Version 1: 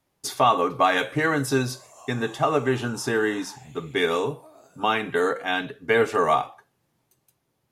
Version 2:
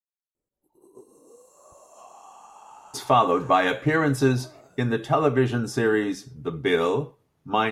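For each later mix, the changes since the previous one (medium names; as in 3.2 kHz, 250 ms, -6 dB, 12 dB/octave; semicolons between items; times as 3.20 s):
speech: entry +2.70 s; master: add tilt EQ -1.5 dB/octave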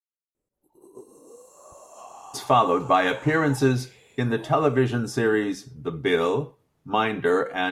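speech: entry -0.60 s; background +4.0 dB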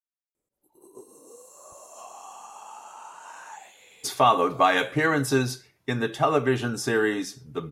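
speech: entry +1.70 s; master: add tilt EQ +1.5 dB/octave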